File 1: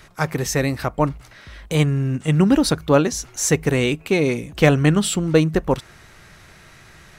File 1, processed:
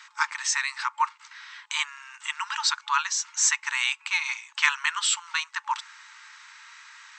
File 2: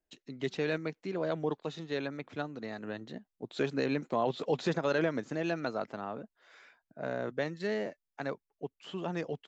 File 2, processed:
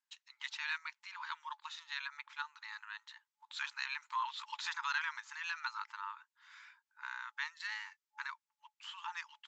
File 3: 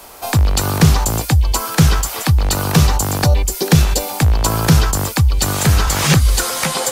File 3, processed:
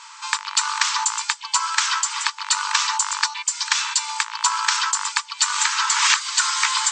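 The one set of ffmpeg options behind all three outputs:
-af "afftfilt=real='re*between(b*sr/4096,860,8300)':imag='im*between(b*sr/4096,860,8300)':win_size=4096:overlap=0.75,volume=1dB"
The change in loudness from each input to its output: -6.5, -6.5, -5.0 LU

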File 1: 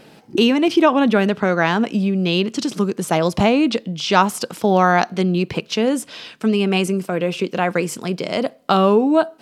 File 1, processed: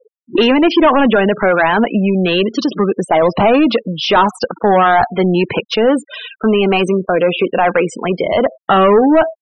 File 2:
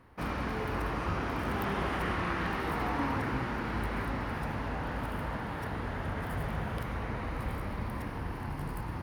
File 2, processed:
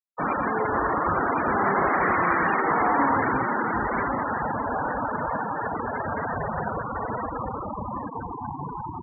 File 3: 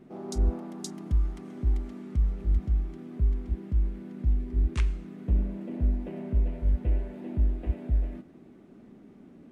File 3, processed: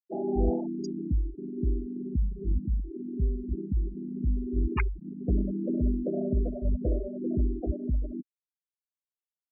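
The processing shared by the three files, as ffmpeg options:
-filter_complex "[0:a]asplit=2[a][b];[b]highpass=f=720:p=1,volume=22dB,asoftclip=type=tanh:threshold=-1dB[c];[a][c]amix=inputs=2:normalize=0,lowpass=f=1.7k:p=1,volume=-6dB,afftfilt=real='re*gte(hypot(re,im),0.112)':imag='im*gte(hypot(re,im),0.112)':win_size=1024:overlap=0.75"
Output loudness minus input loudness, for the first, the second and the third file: +5.0, +9.0, -0.5 LU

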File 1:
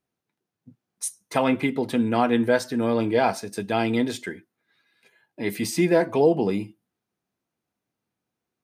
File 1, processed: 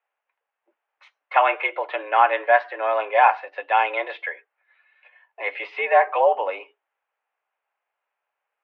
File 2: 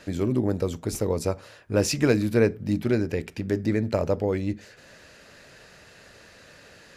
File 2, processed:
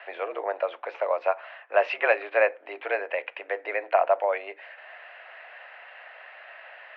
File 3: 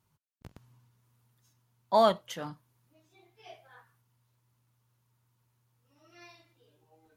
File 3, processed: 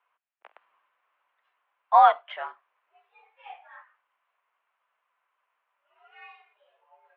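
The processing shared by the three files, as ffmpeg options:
-af "highpass=f=560:t=q:w=0.5412,highpass=f=560:t=q:w=1.307,lowpass=f=2.7k:t=q:w=0.5176,lowpass=f=2.7k:t=q:w=0.7071,lowpass=f=2.7k:t=q:w=1.932,afreqshift=91,volume=7.5dB"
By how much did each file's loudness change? +2.5, -1.5, +7.0 LU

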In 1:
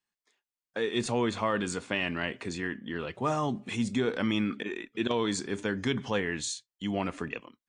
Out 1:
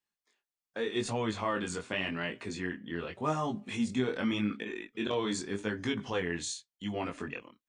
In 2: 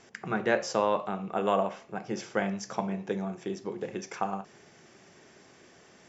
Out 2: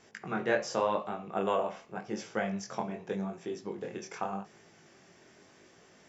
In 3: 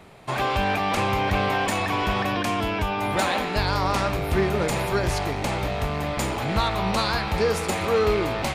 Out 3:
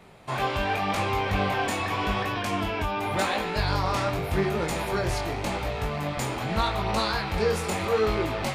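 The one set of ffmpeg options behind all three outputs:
-af "flanger=delay=18:depth=5.7:speed=0.86"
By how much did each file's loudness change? -3.0, -3.0, -3.0 LU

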